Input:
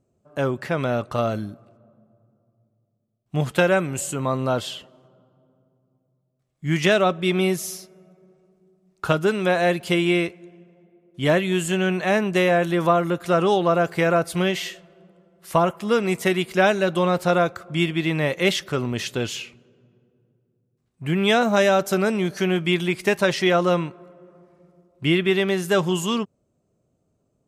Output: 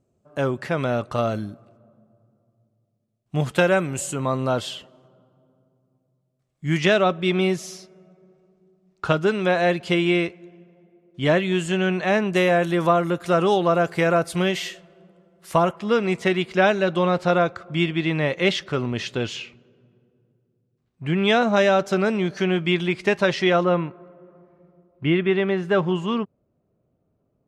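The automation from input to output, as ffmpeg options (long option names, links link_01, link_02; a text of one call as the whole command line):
ffmpeg -i in.wav -af "asetnsamples=nb_out_samples=441:pad=0,asendcmd='6.78 lowpass f 5900;12.33 lowpass f 11000;15.71 lowpass f 5000;23.64 lowpass f 2300',lowpass=11000" out.wav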